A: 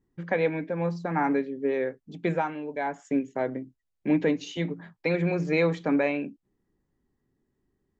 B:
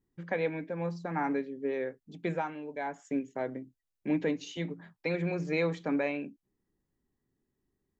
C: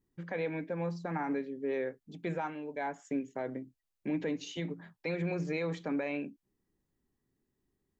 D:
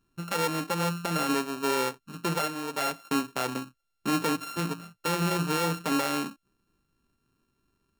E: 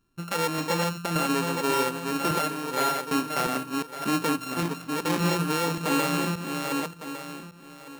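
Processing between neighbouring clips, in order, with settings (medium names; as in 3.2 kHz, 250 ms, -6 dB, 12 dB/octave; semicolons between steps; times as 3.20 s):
treble shelf 4.8 kHz +4.5 dB; trim -6 dB
peak limiter -25.5 dBFS, peak gain reduction 7.5 dB
sorted samples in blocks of 32 samples; trim +6.5 dB
backward echo that repeats 578 ms, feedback 41%, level -3.5 dB; trim +1 dB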